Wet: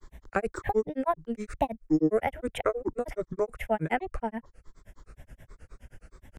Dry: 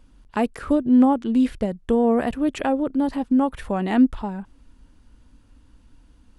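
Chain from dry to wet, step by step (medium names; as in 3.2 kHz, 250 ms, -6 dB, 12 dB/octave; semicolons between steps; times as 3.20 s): static phaser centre 1 kHz, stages 6; granulator, grains 9.5 per s, spray 18 ms, pitch spread up and down by 7 st; three bands compressed up and down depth 40%; trim +3.5 dB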